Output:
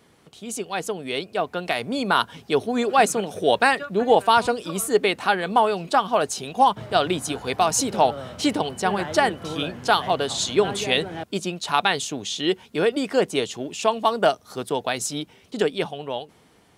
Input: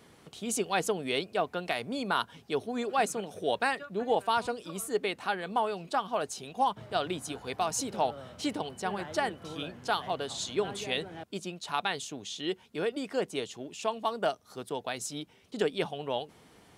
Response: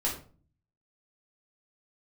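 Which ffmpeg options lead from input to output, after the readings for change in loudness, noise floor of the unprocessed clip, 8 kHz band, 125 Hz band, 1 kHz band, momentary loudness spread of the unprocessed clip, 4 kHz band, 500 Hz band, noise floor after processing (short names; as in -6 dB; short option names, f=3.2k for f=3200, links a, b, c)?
+10.0 dB, -60 dBFS, +9.0 dB, +9.5 dB, +10.0 dB, 8 LU, +9.5 dB, +9.5 dB, -56 dBFS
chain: -af "dynaudnorm=f=360:g=9:m=11.5dB"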